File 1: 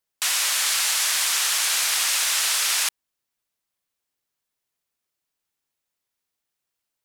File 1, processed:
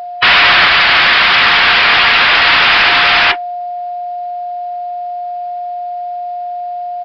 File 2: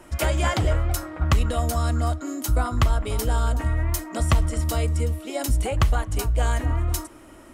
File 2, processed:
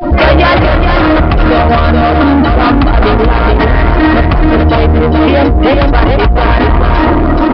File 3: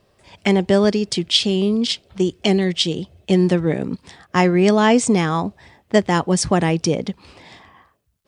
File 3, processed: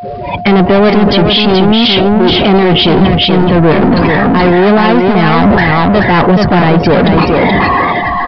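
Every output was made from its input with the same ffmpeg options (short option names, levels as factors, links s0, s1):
-filter_complex "[0:a]aeval=exprs='val(0)+0.5*0.0631*sgn(val(0))':c=same,acrossover=split=3000[s0][s1];[s1]acompressor=threshold=0.0158:ratio=4:attack=1:release=60[s2];[s0][s2]amix=inputs=2:normalize=0,agate=range=0.0891:threshold=0.0316:ratio=16:detection=peak,afftdn=nr=25:nf=-33,equalizer=f=75:t=o:w=1.2:g=-10.5,areverse,acompressor=threshold=0.0631:ratio=20,areverse,asoftclip=type=tanh:threshold=0.0237,aeval=exprs='val(0)+0.00251*sin(2*PI*710*n/s)':c=same,asplit=2[s3][s4];[s4]aecho=0:1:428:0.631[s5];[s3][s5]amix=inputs=2:normalize=0,aresample=11025,aresample=44100,alimiter=level_in=35.5:limit=0.891:release=50:level=0:latency=1,volume=0.891"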